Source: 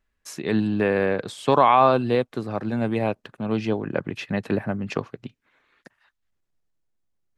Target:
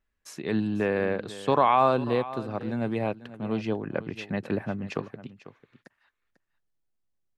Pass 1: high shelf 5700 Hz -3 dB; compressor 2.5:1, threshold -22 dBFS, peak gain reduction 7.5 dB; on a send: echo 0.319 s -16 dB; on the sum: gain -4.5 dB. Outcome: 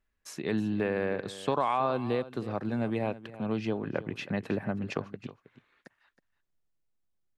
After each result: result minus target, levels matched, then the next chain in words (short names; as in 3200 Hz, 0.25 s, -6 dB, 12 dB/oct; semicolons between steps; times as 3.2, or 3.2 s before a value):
compressor: peak gain reduction +7.5 dB; echo 0.176 s early
high shelf 5700 Hz -3 dB; on a send: echo 0.319 s -16 dB; on the sum: gain -4.5 dB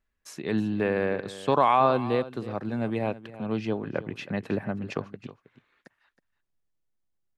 echo 0.176 s early
high shelf 5700 Hz -3 dB; on a send: echo 0.495 s -16 dB; on the sum: gain -4.5 dB